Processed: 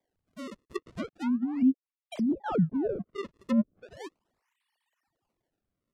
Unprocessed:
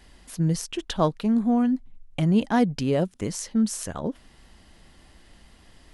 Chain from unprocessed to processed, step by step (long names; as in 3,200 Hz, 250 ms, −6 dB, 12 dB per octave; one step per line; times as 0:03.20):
three sine waves on the formant tracks
source passing by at 0:02.62, 10 m/s, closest 6 metres
parametric band 1,400 Hz −13 dB 0.34 octaves
sample-and-hold swept by an LFO 32×, swing 160% 0.37 Hz
treble cut that deepens with the level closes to 380 Hz, closed at −23.5 dBFS